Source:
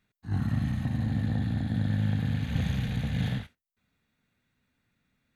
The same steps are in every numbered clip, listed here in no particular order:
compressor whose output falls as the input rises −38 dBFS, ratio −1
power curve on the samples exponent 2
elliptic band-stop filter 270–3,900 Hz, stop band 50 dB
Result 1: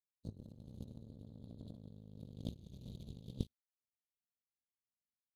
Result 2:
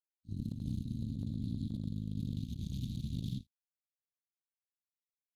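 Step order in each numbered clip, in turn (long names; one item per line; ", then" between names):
elliptic band-stop filter, then compressor whose output falls as the input rises, then power curve on the samples
power curve on the samples, then elliptic band-stop filter, then compressor whose output falls as the input rises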